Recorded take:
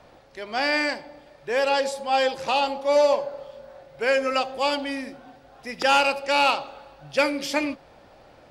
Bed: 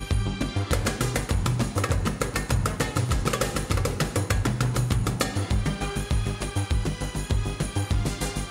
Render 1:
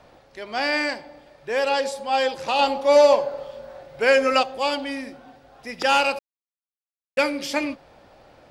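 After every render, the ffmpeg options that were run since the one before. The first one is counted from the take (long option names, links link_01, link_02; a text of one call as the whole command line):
ffmpeg -i in.wav -filter_complex "[0:a]asplit=5[link_01][link_02][link_03][link_04][link_05];[link_01]atrim=end=2.592[link_06];[link_02]atrim=start=2.588:end=4.432,asetpts=PTS-STARTPTS,volume=4.5dB[link_07];[link_03]atrim=start=4.428:end=6.19,asetpts=PTS-STARTPTS,afade=type=out:start_time=1.758:duration=0.004:curve=hsin[link_08];[link_04]atrim=start=6.19:end=7.17,asetpts=PTS-STARTPTS,volume=0[link_09];[link_05]atrim=start=7.17,asetpts=PTS-STARTPTS,afade=type=in:duration=0.004:curve=hsin[link_10];[link_06][link_07]acrossfade=duration=0.004:curve1=hsin:curve2=hsin[link_11];[link_08][link_09][link_10]concat=n=3:v=0:a=1[link_12];[link_11][link_12]acrossfade=duration=0.004:curve1=hsin:curve2=hsin" out.wav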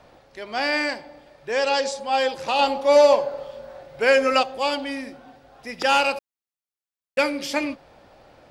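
ffmpeg -i in.wav -filter_complex "[0:a]asettb=1/sr,asplit=3[link_01][link_02][link_03];[link_01]atrim=end=1.524[link_04];[link_02]atrim=start=1.52:end=2,asetpts=PTS-STARTPTS,afade=type=in:duration=0.004:curve=qsin,afade=type=out:start_time=0.476:duration=0.004:curve=qsin,lowpass=frequency=6500:width_type=q:width=2[link_05];[link_03]atrim=start=1.996[link_06];[link_04][link_05]acrossfade=duration=0.004:curve1=hsin:curve2=qsin[link_07];[link_07][link_06]acrossfade=duration=0.004:curve1=qsin:curve2=hsin" out.wav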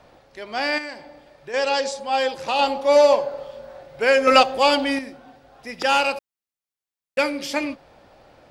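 ffmpeg -i in.wav -filter_complex "[0:a]asettb=1/sr,asplit=3[link_01][link_02][link_03];[link_01]atrim=end=0.784[link_04];[link_02]atrim=start=0.78:end=1.54,asetpts=PTS-STARTPTS,afade=type=in:duration=0.004:curve=qsin,afade=type=out:start_time=0.756:duration=0.004:curve=qsin,acompressor=threshold=-35dB:ratio=2:attack=3.2:release=140:knee=1:detection=peak[link_05];[link_03]atrim=start=1.536[link_06];[link_04][link_05]acrossfade=duration=0.004:curve1=hsin:curve2=qsin[link_07];[link_07][link_06]acrossfade=duration=0.004:curve1=qsin:curve2=hsin,asettb=1/sr,asplit=3[link_08][link_09][link_10];[link_08]atrim=end=4.274[link_11];[link_09]atrim=start=4.27:end=4.99,asetpts=PTS-STARTPTS,afade=type=in:duration=0.004:curve=qsin,afade=type=out:start_time=0.716:duration=0.004:curve=qsin,acontrast=82[link_12];[link_10]atrim=start=4.986[link_13];[link_11][link_12]acrossfade=duration=0.004:curve1=hsin:curve2=qsin[link_14];[link_14][link_13]acrossfade=duration=0.004:curve1=qsin:curve2=hsin" out.wav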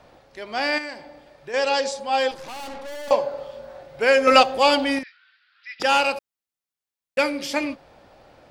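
ffmpeg -i in.wav -filter_complex "[0:a]asettb=1/sr,asplit=3[link_01][link_02][link_03];[link_01]atrim=end=2.314[link_04];[link_02]atrim=start=2.31:end=3.11,asetpts=PTS-STARTPTS,afade=type=in:duration=0.004:curve=qsin,afade=type=out:start_time=0.796:duration=0.004:curve=qsin,aeval=exprs='(tanh(50.1*val(0)+0.55)-tanh(0.55))/50.1':channel_layout=same[link_05];[link_03]atrim=start=3.106[link_06];[link_04][link_05]acrossfade=duration=0.004:curve1=hsin:curve2=qsin[link_07];[link_07][link_06]acrossfade=duration=0.004:curve1=qsin:curve2=hsin,asettb=1/sr,asplit=3[link_08][link_09][link_10];[link_08]atrim=end=5.034[link_11];[link_09]atrim=start=5.03:end=5.8,asetpts=PTS-STARTPTS,afade=type=in:duration=0.004:curve=qsin,afade=type=out:start_time=0.766:duration=0.004:curve=qsin,asuperpass=centerf=2600:order=12:qfactor=0.76[link_12];[link_10]atrim=start=5.796[link_13];[link_11][link_12]acrossfade=duration=0.004:curve1=hsin:curve2=qsin[link_14];[link_14][link_13]acrossfade=duration=0.004:curve1=qsin:curve2=hsin" out.wav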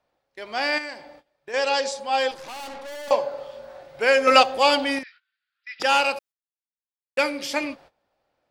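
ffmpeg -i in.wav -af "agate=range=-21dB:threshold=-45dB:ratio=16:detection=peak,lowshelf=frequency=320:gain=-6.5" out.wav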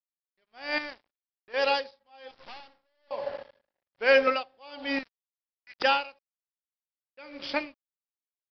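ffmpeg -i in.wav -af "aresample=11025,aeval=exprs='sgn(val(0))*max(abs(val(0))-0.0106,0)':channel_layout=same,aresample=44100,aeval=exprs='val(0)*pow(10,-33*(0.5-0.5*cos(2*PI*1.2*n/s))/20)':channel_layout=same" out.wav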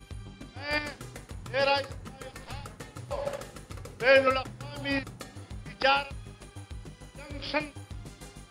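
ffmpeg -i in.wav -i bed.wav -filter_complex "[1:a]volume=-17.5dB[link_01];[0:a][link_01]amix=inputs=2:normalize=0" out.wav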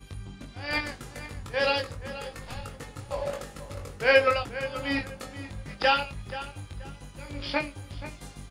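ffmpeg -i in.wav -filter_complex "[0:a]asplit=2[link_01][link_02];[link_02]adelay=21,volume=-4dB[link_03];[link_01][link_03]amix=inputs=2:normalize=0,asplit=2[link_04][link_05];[link_05]adelay=480,lowpass=frequency=4300:poles=1,volume=-13.5dB,asplit=2[link_06][link_07];[link_07]adelay=480,lowpass=frequency=4300:poles=1,volume=0.27,asplit=2[link_08][link_09];[link_09]adelay=480,lowpass=frequency=4300:poles=1,volume=0.27[link_10];[link_04][link_06][link_08][link_10]amix=inputs=4:normalize=0" out.wav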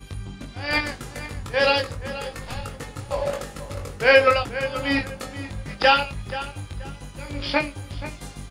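ffmpeg -i in.wav -af "volume=6dB,alimiter=limit=-3dB:level=0:latency=1" out.wav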